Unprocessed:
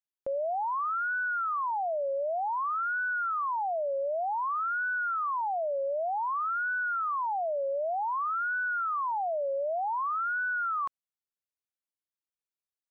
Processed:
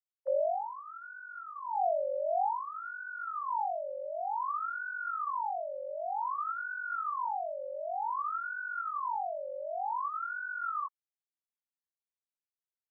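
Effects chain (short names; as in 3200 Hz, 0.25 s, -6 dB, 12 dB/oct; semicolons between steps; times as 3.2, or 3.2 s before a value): sine-wave speech; band-pass sweep 550 Hz -> 1100 Hz, 0.38–4.12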